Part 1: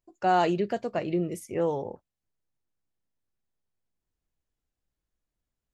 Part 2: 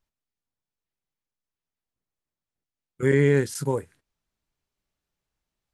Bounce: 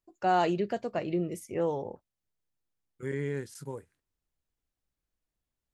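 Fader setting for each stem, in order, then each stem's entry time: -2.5 dB, -14.0 dB; 0.00 s, 0.00 s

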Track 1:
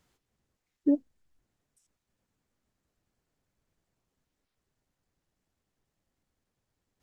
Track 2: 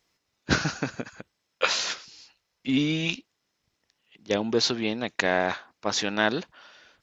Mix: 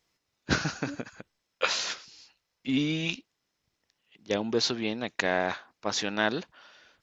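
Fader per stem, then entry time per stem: -16.5 dB, -3.0 dB; 0.00 s, 0.00 s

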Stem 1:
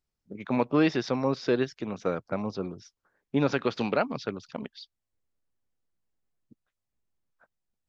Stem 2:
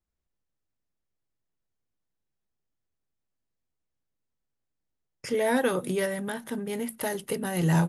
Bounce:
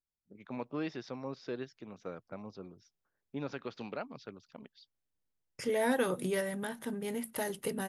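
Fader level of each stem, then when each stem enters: -14.0 dB, -5.0 dB; 0.00 s, 0.35 s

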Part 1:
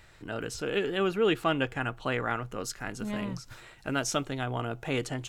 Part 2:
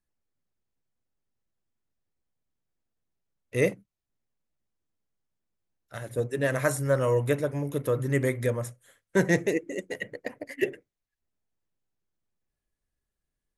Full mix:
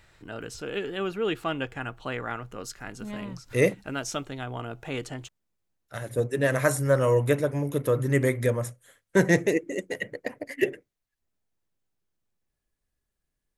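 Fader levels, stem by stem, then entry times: -2.5 dB, +2.5 dB; 0.00 s, 0.00 s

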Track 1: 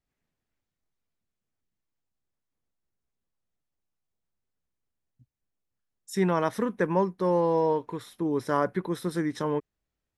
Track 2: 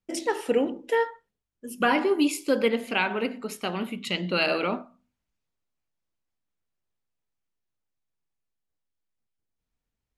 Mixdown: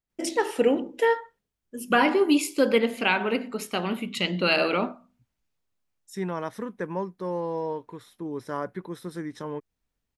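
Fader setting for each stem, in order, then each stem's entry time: -6.0 dB, +2.0 dB; 0.00 s, 0.10 s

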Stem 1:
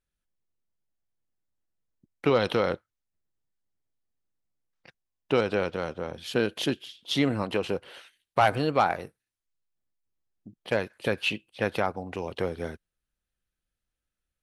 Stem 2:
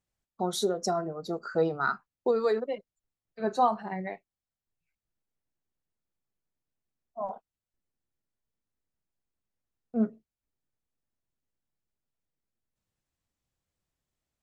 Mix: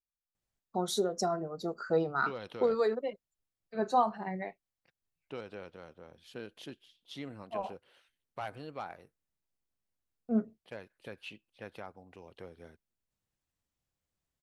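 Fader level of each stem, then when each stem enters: -18.5 dB, -2.5 dB; 0.00 s, 0.35 s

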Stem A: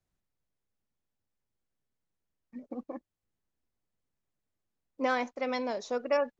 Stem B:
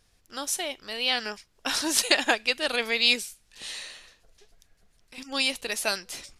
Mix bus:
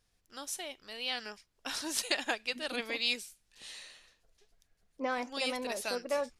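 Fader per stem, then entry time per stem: -5.0 dB, -10.0 dB; 0.00 s, 0.00 s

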